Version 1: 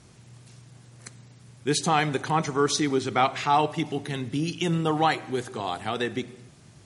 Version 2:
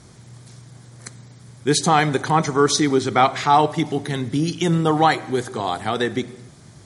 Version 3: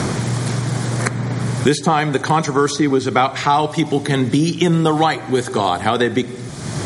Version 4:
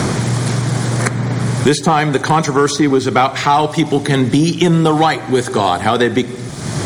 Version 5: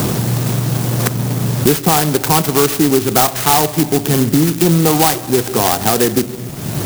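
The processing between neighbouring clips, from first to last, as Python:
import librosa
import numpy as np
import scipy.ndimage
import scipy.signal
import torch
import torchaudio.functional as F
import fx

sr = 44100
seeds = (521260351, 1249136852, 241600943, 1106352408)

y1 = fx.peak_eq(x, sr, hz=2700.0, db=-10.0, octaves=0.24)
y1 = F.gain(torch.from_numpy(y1), 6.5).numpy()
y2 = fx.band_squash(y1, sr, depth_pct=100)
y2 = F.gain(torch.from_numpy(y2), 2.5).numpy()
y3 = fx.leveller(y2, sr, passes=1)
y4 = fx.clock_jitter(y3, sr, seeds[0], jitter_ms=0.14)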